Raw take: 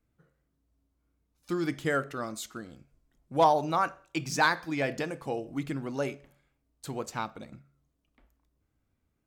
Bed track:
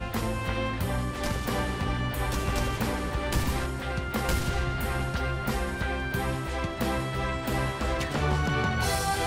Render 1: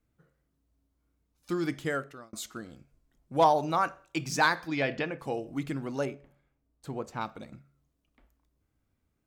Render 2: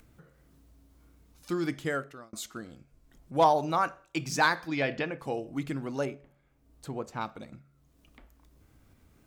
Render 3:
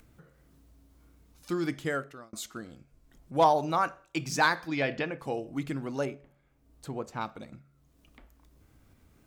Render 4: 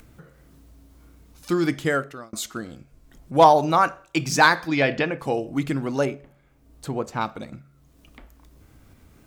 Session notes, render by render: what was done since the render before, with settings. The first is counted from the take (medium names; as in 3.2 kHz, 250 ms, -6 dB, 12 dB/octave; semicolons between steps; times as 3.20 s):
1.51–2.33 s: fade out equal-power; 4.67–5.18 s: resonant low-pass 5.1 kHz -> 2.3 kHz, resonance Q 1.6; 6.05–7.21 s: treble shelf 2.3 kHz -11.5 dB
upward compressor, threshold -45 dBFS
no audible change
trim +8.5 dB